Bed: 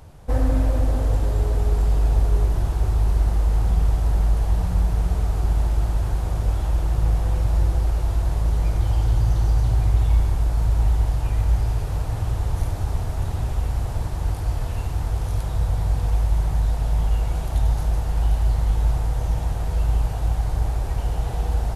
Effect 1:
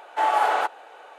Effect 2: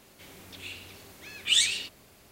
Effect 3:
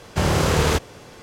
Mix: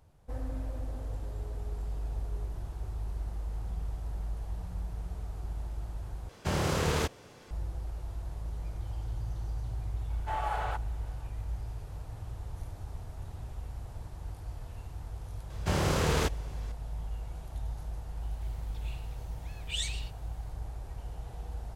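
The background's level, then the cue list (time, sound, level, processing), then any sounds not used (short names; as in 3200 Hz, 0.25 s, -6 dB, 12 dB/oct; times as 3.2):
bed -17 dB
6.29 replace with 3 -10 dB
10.1 add 1 -13 dB
15.5 add 3 -9 dB
18.22 add 2 -12.5 dB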